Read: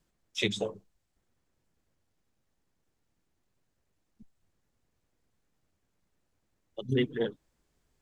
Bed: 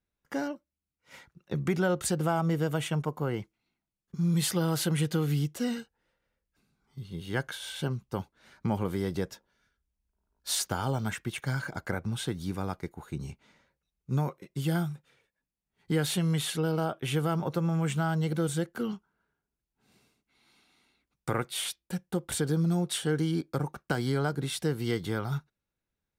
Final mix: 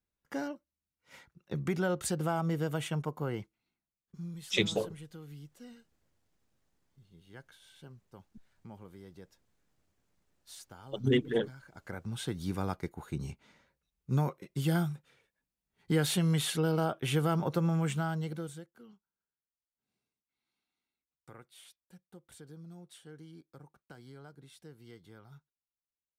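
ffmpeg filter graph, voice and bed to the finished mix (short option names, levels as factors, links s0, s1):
-filter_complex "[0:a]adelay=4150,volume=1.12[s0];[1:a]volume=5.96,afade=t=out:st=3.61:d=0.79:silence=0.158489,afade=t=in:st=11.68:d=0.87:silence=0.105925,afade=t=out:st=17.65:d=1.03:silence=0.0794328[s1];[s0][s1]amix=inputs=2:normalize=0"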